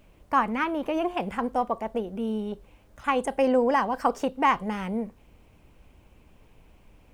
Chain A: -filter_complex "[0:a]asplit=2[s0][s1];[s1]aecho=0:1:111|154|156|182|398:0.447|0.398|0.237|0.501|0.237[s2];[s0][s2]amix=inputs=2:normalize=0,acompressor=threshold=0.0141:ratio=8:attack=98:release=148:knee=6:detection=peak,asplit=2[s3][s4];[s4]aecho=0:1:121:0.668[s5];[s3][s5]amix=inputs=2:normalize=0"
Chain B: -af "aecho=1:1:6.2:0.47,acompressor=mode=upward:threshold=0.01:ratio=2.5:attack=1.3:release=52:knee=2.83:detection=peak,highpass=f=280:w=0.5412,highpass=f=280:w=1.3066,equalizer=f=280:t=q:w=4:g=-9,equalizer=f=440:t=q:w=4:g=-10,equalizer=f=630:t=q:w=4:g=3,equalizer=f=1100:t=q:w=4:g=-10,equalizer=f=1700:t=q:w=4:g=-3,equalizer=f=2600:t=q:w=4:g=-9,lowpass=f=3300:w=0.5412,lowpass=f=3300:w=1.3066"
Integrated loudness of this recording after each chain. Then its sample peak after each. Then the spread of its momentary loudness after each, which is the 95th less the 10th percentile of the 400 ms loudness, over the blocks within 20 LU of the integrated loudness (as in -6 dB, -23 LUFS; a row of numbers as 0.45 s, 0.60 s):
-34.0 LUFS, -30.0 LUFS; -15.5 dBFS, -13.0 dBFS; 5 LU, 15 LU